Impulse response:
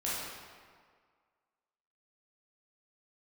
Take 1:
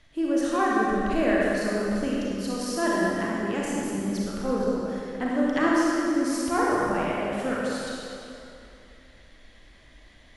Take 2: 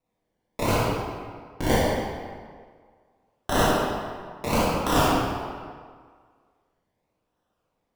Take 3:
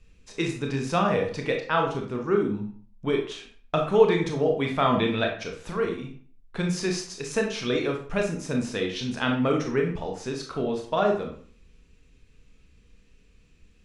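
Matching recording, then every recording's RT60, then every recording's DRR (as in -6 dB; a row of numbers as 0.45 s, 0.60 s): 2; 2.8 s, 1.8 s, 0.50 s; -5.5 dB, -8.5 dB, 1.5 dB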